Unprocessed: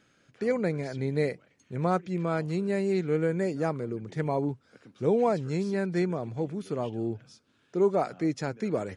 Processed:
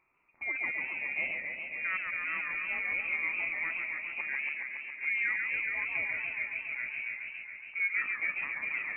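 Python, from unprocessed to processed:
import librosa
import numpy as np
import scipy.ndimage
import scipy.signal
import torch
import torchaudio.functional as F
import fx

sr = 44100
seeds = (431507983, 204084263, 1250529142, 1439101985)

y = fx.freq_invert(x, sr, carrier_hz=2600)
y = fx.echo_warbled(y, sr, ms=139, feedback_pct=80, rate_hz=2.8, cents=166, wet_db=-5)
y = y * librosa.db_to_amplitude(-8.5)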